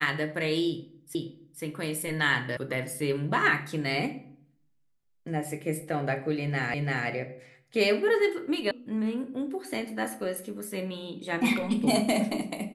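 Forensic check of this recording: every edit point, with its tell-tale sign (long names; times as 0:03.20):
0:01.15: the same again, the last 0.47 s
0:02.57: cut off before it has died away
0:06.74: the same again, the last 0.34 s
0:08.71: cut off before it has died away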